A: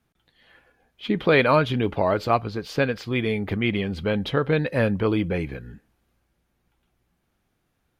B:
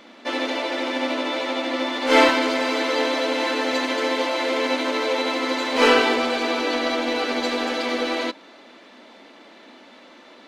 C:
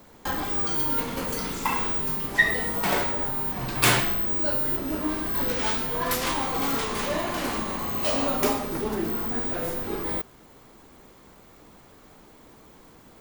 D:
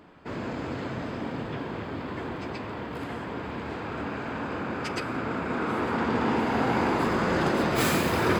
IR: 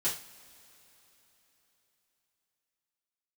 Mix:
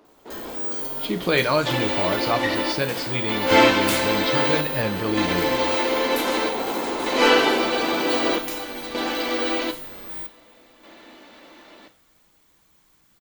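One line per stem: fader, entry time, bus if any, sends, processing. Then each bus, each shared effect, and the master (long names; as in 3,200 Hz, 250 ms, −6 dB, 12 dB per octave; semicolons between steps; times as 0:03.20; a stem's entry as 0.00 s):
−5.5 dB, 0.00 s, send −10.5 dB, parametric band 4,800 Hz +13 dB 0.98 octaves
−2.5 dB, 1.40 s, send −9.5 dB, square-wave tremolo 0.53 Hz, depth 65%, duty 70%
−0.5 dB, 0.05 s, send −10.5 dB, guitar amp tone stack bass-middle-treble 5-5-5
+0.5 dB, 0.00 s, no send, running median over 25 samples; Chebyshev high-pass filter 390 Hz, order 2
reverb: on, pre-delay 3 ms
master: no processing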